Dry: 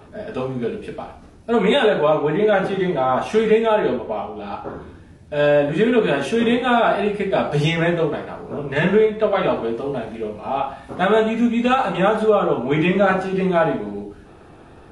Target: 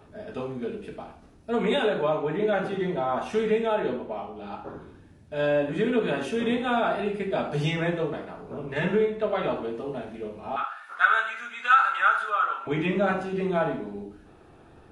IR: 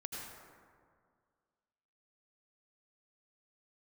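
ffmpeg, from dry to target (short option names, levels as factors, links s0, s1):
-filter_complex "[0:a]asettb=1/sr,asplit=3[s0][s1][s2];[s0]atrim=end=10.564[s3];[s1]atrim=start=10.56:end=12.67,asetpts=PTS-STARTPTS,afade=t=in:d=0.004:c=qsin,afade=t=out:st=2.106:d=0.004:c=qsin,highpass=f=1400:t=q:w=6.2[s4];[s2]atrim=start=12.666[s5];[s3][s4]acrossfade=d=0.004:c1=hsin:c2=qsin[s6];[s6][s5]acrossfade=d=0.004:c1=qsin:c2=hsin[s7];[1:a]atrim=start_sample=2205,atrim=end_sample=3528[s8];[s7][s8]afir=irnorm=-1:irlink=0,volume=0.668"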